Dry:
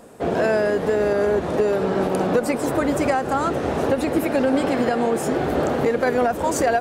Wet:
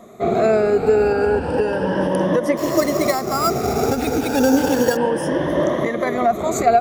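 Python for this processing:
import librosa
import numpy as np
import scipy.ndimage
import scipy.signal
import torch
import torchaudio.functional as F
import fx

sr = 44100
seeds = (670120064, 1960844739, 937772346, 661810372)

y = fx.spec_ripple(x, sr, per_octave=1.2, drift_hz=0.32, depth_db=16)
y = fx.high_shelf(y, sr, hz=5100.0, db=-6.5)
y = fx.sample_hold(y, sr, seeds[0], rate_hz=6200.0, jitter_pct=0, at=(2.57, 4.97))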